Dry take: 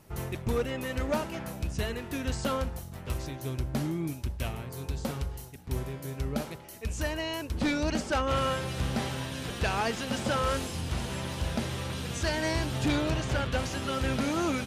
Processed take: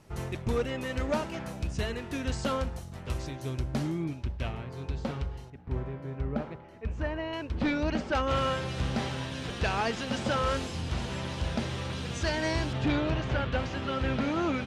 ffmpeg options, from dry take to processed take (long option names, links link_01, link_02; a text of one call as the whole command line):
ffmpeg -i in.wav -af "asetnsamples=nb_out_samples=441:pad=0,asendcmd='4.04 lowpass f 3700;5.5 lowpass f 1800;7.33 lowpass f 3300;8.15 lowpass f 6300;12.73 lowpass f 3400',lowpass=7900" out.wav